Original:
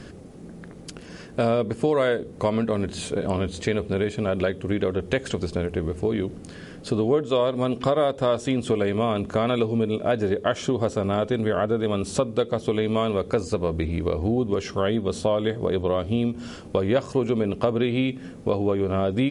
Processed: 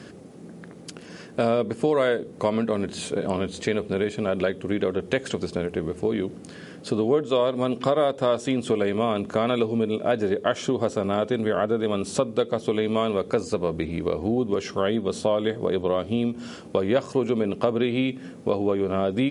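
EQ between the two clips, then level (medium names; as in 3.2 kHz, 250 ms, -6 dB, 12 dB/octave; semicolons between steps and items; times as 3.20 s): high-pass 140 Hz 12 dB/octave; 0.0 dB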